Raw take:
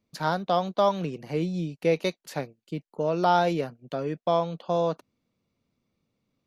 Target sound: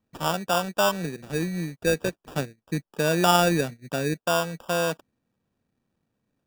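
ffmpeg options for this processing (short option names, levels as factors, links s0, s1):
-filter_complex "[0:a]asettb=1/sr,asplit=3[s0][s1][s2];[s0]atrim=end=2.164[s3];[s1]atrim=start=2.16:end=4.14,asetpts=PTS-STARTPTS,afade=t=in:d=0.004:c=qsin,afade=t=out:st=1.976:d=0.004:c=qsin,lowshelf=f=390:g=7[s4];[s2]atrim=start=4.136[s5];[s3][s4]acrossfade=d=0.004:c1=hsin:c2=qsin[s6];[s6][s5]acrossfade=d=0.004:c1=qsin:c2=hsin,acrusher=samples=21:mix=1:aa=0.000001"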